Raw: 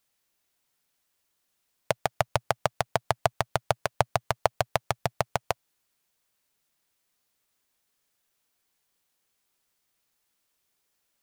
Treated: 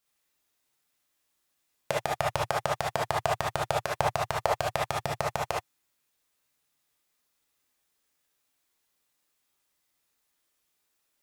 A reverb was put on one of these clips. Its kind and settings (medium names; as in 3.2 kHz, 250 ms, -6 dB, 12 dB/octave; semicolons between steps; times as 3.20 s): gated-style reverb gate 90 ms rising, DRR -3.5 dB; trim -5 dB